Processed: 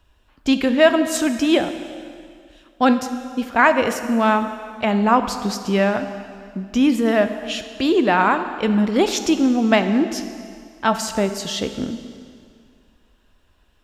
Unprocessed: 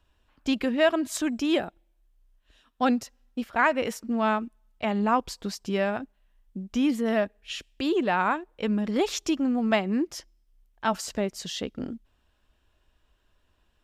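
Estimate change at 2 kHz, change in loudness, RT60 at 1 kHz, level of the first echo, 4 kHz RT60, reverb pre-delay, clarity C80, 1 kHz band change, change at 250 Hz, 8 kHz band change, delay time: +8.0 dB, +8.0 dB, 2.2 s, no echo, 2.0 s, 7 ms, 10.5 dB, +8.0 dB, +8.0 dB, +8.0 dB, no echo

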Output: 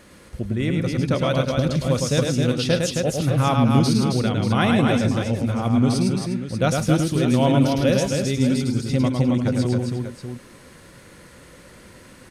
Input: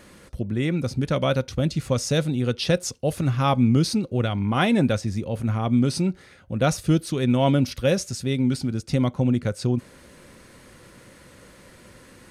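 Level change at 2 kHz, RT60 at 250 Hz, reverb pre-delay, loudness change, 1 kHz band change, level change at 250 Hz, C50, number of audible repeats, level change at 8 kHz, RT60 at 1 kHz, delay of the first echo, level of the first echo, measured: +3.0 dB, no reverb, no reverb, +2.5 dB, +3.0 dB, +3.0 dB, no reverb, 5, +3.0 dB, no reverb, 106 ms, -4.0 dB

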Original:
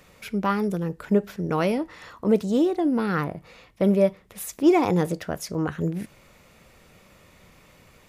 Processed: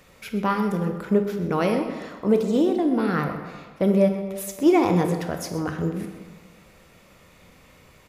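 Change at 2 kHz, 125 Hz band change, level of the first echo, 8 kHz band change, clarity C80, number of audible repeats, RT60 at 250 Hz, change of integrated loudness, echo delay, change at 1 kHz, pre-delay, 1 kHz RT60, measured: +1.0 dB, +1.0 dB, -14.0 dB, +0.5 dB, 7.5 dB, 1, 1.4 s, +1.0 dB, 128 ms, +1.5 dB, 21 ms, 1.5 s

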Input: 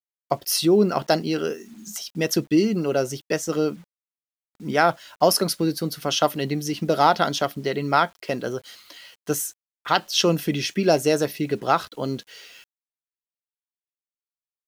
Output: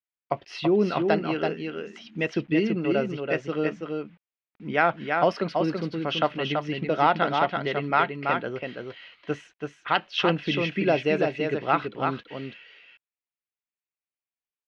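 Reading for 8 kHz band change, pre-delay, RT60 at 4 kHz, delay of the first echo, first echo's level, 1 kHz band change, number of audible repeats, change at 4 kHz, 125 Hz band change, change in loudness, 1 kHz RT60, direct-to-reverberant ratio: under -25 dB, no reverb, no reverb, 332 ms, -4.5 dB, -2.0 dB, 1, -6.0 dB, -3.0 dB, -3.0 dB, no reverb, no reverb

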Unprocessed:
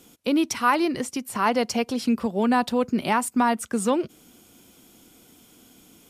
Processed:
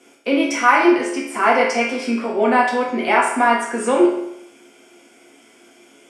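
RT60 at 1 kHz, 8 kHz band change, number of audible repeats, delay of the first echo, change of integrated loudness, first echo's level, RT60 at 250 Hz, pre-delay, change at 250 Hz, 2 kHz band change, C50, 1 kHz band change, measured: 0.80 s, +1.0 dB, no echo, no echo, +6.5 dB, no echo, 0.80 s, 4 ms, +3.5 dB, +11.0 dB, 3.0 dB, +7.5 dB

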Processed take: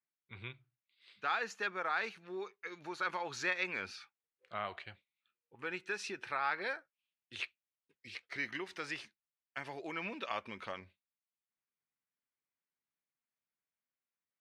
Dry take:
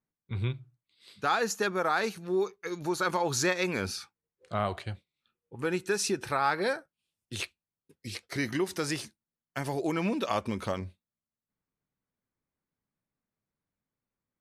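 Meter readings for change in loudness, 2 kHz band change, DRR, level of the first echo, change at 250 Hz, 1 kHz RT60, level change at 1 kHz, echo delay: -8.5 dB, -3.5 dB, no reverb, no echo, -16.0 dB, no reverb, -8.0 dB, no echo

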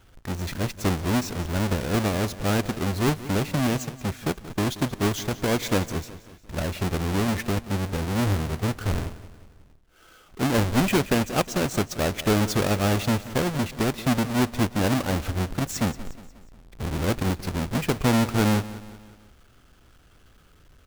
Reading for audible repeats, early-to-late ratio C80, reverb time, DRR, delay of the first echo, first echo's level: 4, no reverb, no reverb, no reverb, 180 ms, -16.0 dB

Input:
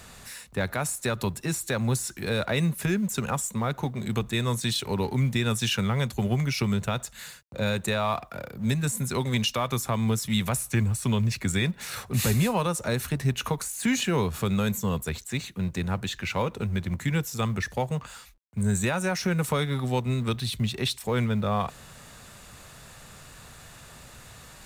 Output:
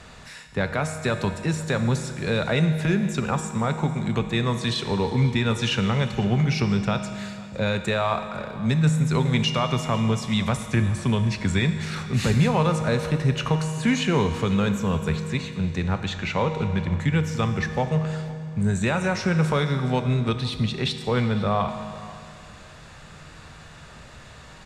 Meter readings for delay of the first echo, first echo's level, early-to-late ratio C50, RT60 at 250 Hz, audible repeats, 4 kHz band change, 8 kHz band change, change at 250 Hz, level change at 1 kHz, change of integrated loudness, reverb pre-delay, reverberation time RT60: 503 ms, -20.5 dB, 8.5 dB, 2.4 s, 1, +2.0 dB, -5.5 dB, +4.0 dB, +4.0 dB, +3.5 dB, 6 ms, 2.3 s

